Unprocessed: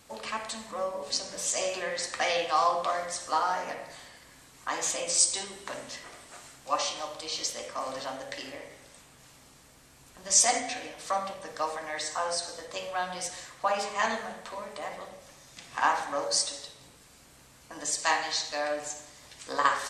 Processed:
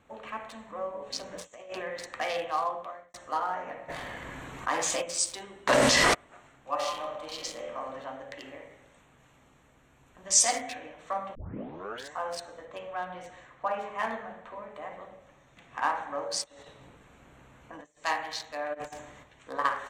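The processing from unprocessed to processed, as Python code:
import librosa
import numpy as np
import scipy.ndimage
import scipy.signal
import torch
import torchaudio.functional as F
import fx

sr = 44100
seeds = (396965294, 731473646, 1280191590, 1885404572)

y = fx.over_compress(x, sr, threshold_db=-35.0, ratio=-0.5, at=(1.17, 1.82))
y = fx.env_flatten(y, sr, amount_pct=50, at=(3.88, 5.01), fade=0.02)
y = fx.env_flatten(y, sr, amount_pct=100, at=(5.67, 6.13), fade=0.02)
y = fx.reverb_throw(y, sr, start_s=6.72, length_s=1.0, rt60_s=0.95, drr_db=0.0)
y = fx.high_shelf(y, sr, hz=4100.0, db=6.5, at=(8.39, 10.74), fade=0.02)
y = fx.high_shelf(y, sr, hz=6700.0, db=-8.0, at=(12.65, 14.75))
y = fx.over_compress(y, sr, threshold_db=-45.0, ratio=-1.0, at=(16.44, 18.04))
y = fx.over_compress(y, sr, threshold_db=-40.0, ratio=-0.5, at=(18.73, 19.22), fade=0.02)
y = fx.edit(y, sr, fx.fade_out_span(start_s=2.5, length_s=0.64),
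    fx.tape_start(start_s=11.35, length_s=0.78), tone=tone)
y = fx.wiener(y, sr, points=9)
y = fx.high_shelf(y, sr, hz=6500.0, db=-4.5)
y = y * librosa.db_to_amplitude(-2.5)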